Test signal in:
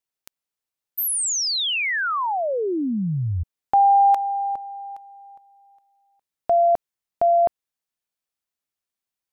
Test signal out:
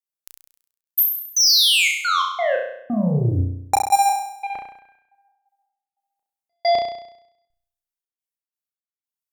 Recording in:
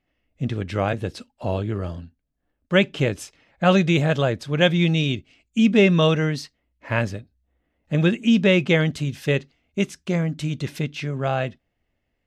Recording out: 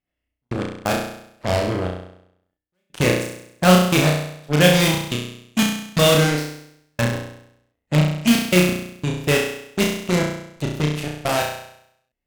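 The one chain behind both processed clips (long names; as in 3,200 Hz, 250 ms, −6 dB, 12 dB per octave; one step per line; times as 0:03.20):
high-shelf EQ 7,400 Hz +9 dB
hard clipping −13 dBFS
harmonic generator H 2 −42 dB, 5 −12 dB, 7 −9 dB, 8 −43 dB, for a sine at −13 dBFS
gate pattern "xx.x.x..x" 88 BPM −60 dB
flutter between parallel walls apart 5.7 metres, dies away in 0.73 s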